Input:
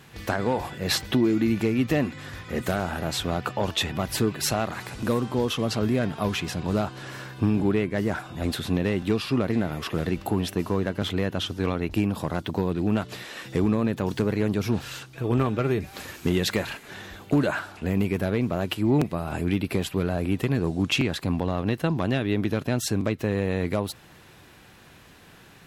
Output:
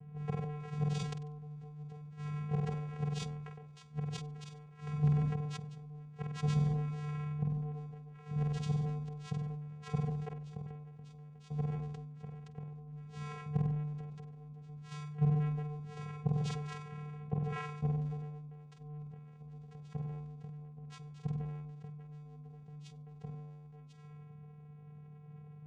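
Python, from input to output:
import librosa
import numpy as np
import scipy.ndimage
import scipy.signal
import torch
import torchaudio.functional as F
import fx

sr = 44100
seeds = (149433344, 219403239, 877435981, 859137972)

y = fx.env_lowpass(x, sr, base_hz=650.0, full_db=-24.0)
y = fx.gate_flip(y, sr, shuts_db=-18.0, range_db=-27)
y = fx.vocoder(y, sr, bands=4, carrier='square', carrier_hz=149.0)
y = fx.room_flutter(y, sr, wall_m=8.2, rt60_s=0.37)
y = fx.sustainer(y, sr, db_per_s=31.0)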